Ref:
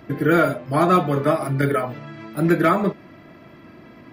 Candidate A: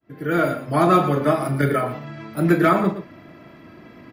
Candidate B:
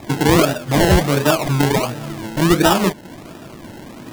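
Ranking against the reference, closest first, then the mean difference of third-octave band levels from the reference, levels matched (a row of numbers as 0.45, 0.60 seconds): A, B; 2.5, 8.0 decibels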